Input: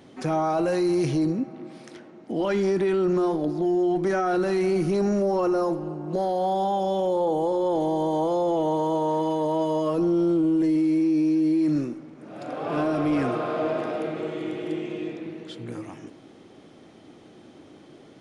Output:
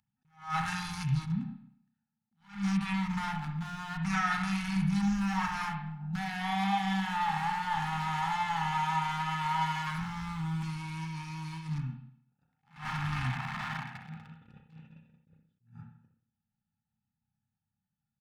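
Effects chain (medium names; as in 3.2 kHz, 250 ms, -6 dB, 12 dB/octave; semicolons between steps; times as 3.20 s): local Wiener filter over 41 samples; upward compressor, threshold -36 dBFS; Chebyshev band-stop 220–840 Hz, order 4; treble shelf 2.3 kHz +8 dB; gate -42 dBFS, range -36 dB; treble shelf 5.7 kHz -4 dB; comb 2.3 ms, depth 38%; reverberation RT60 0.65 s, pre-delay 31 ms, DRR 3.5 dB; attacks held to a fixed rise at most 170 dB/s; trim +1.5 dB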